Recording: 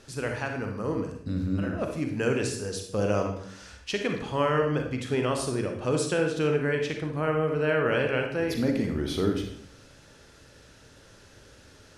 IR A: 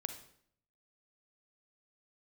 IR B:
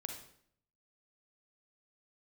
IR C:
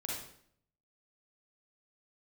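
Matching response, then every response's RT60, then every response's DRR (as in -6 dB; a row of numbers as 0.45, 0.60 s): B; 0.65, 0.65, 0.65 s; 7.5, 3.0, -4.0 dB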